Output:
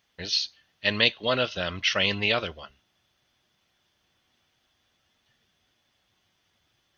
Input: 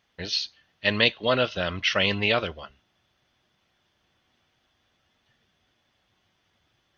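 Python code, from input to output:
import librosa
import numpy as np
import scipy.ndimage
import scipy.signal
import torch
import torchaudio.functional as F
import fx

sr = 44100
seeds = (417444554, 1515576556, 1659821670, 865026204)

y = fx.high_shelf(x, sr, hz=4100.0, db=8.5)
y = y * 10.0 ** (-3.0 / 20.0)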